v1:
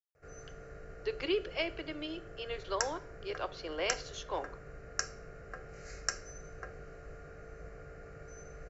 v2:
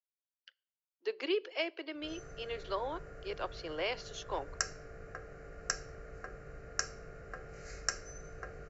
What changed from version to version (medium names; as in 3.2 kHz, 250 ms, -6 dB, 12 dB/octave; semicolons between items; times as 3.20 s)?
speech: send -10.0 dB; background: entry +1.80 s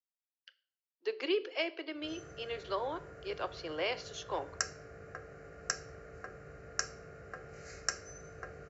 speech: send +10.5 dB; master: add high-pass 62 Hz 24 dB/octave